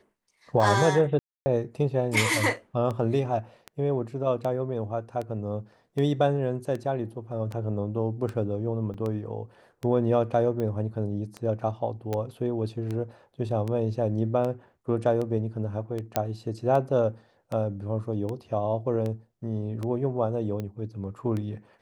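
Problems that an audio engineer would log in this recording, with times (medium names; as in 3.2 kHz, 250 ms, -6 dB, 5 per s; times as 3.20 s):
tick 78 rpm -21 dBFS
1.19–1.46 s: dropout 270 ms
8.94 s: dropout 4.8 ms
12.13 s: pop -17 dBFS
16.16 s: pop -9 dBFS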